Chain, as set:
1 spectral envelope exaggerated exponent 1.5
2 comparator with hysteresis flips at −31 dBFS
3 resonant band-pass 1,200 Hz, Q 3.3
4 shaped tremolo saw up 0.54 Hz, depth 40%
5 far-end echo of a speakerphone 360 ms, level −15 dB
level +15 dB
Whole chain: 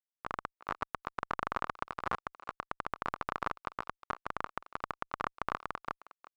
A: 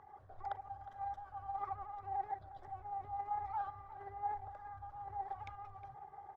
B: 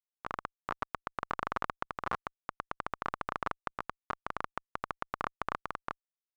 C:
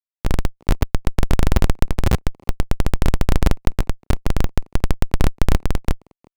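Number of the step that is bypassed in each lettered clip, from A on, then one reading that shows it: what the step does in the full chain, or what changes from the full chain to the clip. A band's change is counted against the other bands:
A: 2, change in crest factor −9.0 dB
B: 5, echo-to-direct ratio −25.5 dB to none audible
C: 3, 125 Hz band +15.5 dB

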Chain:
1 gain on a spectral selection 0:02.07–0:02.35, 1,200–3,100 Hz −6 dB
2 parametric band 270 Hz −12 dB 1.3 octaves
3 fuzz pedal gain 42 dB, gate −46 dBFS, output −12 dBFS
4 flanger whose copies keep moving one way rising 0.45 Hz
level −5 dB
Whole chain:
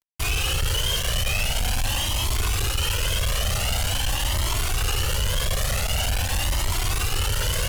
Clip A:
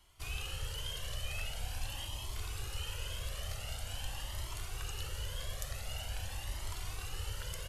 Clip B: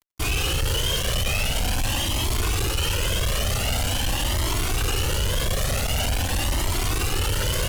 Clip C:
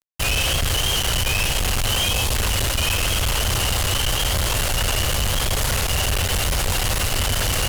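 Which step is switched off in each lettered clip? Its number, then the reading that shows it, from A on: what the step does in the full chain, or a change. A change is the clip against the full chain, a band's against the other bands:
3, distortion level −4 dB
2, 250 Hz band +5.0 dB
4, 125 Hz band −2.0 dB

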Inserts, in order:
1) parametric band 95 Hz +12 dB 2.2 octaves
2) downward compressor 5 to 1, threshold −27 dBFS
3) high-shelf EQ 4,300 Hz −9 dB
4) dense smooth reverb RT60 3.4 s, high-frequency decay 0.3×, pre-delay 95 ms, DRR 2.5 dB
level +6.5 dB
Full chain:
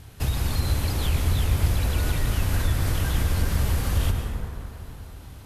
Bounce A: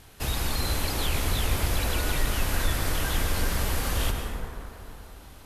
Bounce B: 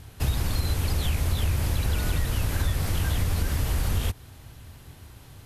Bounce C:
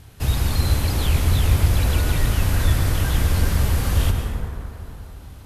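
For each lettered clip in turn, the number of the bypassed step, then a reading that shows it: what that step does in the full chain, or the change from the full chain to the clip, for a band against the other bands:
1, 125 Hz band −10.0 dB
4, change in momentary loudness spread +6 LU
2, average gain reduction 3.0 dB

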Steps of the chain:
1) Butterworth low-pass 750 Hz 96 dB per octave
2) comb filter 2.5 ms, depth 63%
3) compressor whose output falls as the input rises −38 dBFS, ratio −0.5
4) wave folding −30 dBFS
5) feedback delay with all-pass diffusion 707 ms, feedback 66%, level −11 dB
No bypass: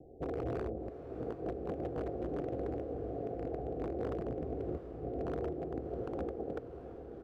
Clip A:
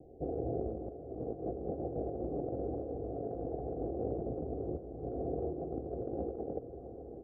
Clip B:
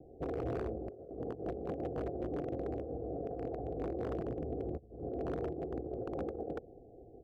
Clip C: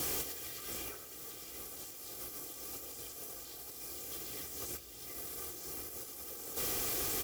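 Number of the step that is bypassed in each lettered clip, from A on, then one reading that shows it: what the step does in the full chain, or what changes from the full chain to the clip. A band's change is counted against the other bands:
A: 4, distortion level −15 dB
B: 5, echo-to-direct ratio −8.5 dB to none audible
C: 1, 2 kHz band +19.5 dB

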